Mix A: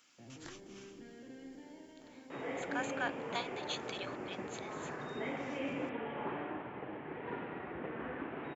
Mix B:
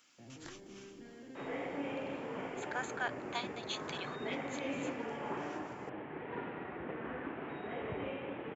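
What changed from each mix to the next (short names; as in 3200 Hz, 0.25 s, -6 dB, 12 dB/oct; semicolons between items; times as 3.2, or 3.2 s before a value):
second sound: entry -0.95 s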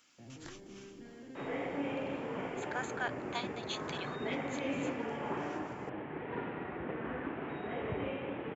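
second sound: send +7.0 dB; master: add low shelf 180 Hz +4.5 dB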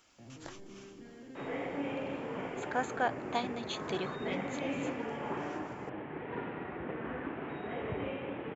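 speech: remove HPF 1200 Hz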